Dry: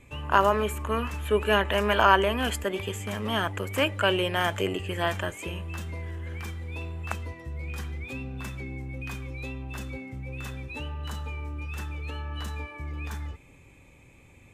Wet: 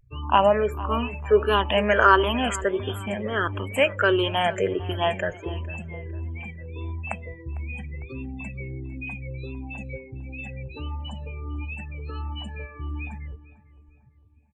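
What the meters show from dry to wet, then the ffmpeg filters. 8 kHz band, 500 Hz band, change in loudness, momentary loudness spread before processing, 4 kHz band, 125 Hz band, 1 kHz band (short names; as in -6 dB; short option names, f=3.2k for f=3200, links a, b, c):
-1.0 dB, +4.5 dB, +3.5 dB, 14 LU, +1.0 dB, +1.5 dB, +2.5 dB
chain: -filter_complex "[0:a]afftfilt=real='re*pow(10,13/40*sin(2*PI*(0.56*log(max(b,1)*sr/1024/100)/log(2)-(-1.5)*(pts-256)/sr)))':imag='im*pow(10,13/40*sin(2*PI*(0.56*log(max(b,1)*sr/1024/100)/log(2)-(-1.5)*(pts-256)/sr)))':win_size=1024:overlap=0.75,afftdn=nr=34:nf=-36,adynamicequalizer=threshold=0.0126:dfrequency=530:dqfactor=3.1:tfrequency=530:tqfactor=3.1:attack=5:release=100:ratio=0.375:range=1.5:mode=boostabove:tftype=bell,asplit=2[a][b];[b]adelay=452,lowpass=f=2.2k:p=1,volume=-17.5dB,asplit=2[c][d];[d]adelay=452,lowpass=f=2.2k:p=1,volume=0.45,asplit=2[e][f];[f]adelay=452,lowpass=f=2.2k:p=1,volume=0.45,asplit=2[g][h];[h]adelay=452,lowpass=f=2.2k:p=1,volume=0.45[i];[a][c][e][g][i]amix=inputs=5:normalize=0"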